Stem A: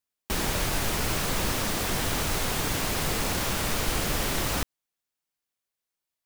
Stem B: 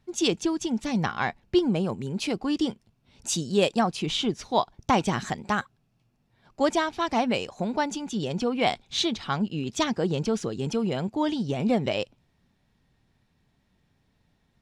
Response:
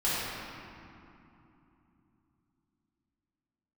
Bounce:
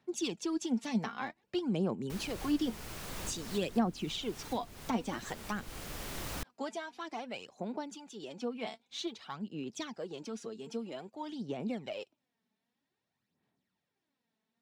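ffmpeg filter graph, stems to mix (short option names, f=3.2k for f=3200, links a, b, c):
-filter_complex "[0:a]adelay=1800,volume=-9.5dB[a];[1:a]highpass=230,aphaser=in_gain=1:out_gain=1:delay=4.6:decay=0.57:speed=0.52:type=sinusoidal,volume=-6.5dB,afade=t=out:st=6.42:d=0.31:silence=0.421697,asplit=2[b][c];[c]apad=whole_len=355162[d];[a][d]sidechaincompress=threshold=-35dB:ratio=6:attack=16:release=1310[e];[e][b]amix=inputs=2:normalize=0,acrossover=split=350[f][g];[g]acompressor=threshold=-38dB:ratio=3[h];[f][h]amix=inputs=2:normalize=0"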